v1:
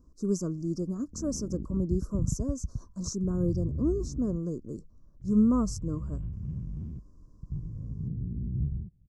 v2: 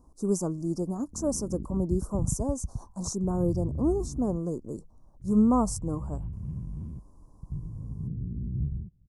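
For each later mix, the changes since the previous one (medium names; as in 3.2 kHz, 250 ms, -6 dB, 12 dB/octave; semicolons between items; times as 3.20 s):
speech: remove static phaser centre 3 kHz, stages 6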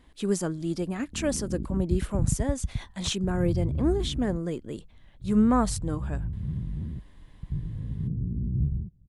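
speech: remove elliptic band-stop 1.1–5.7 kHz, stop band 50 dB; background +4.0 dB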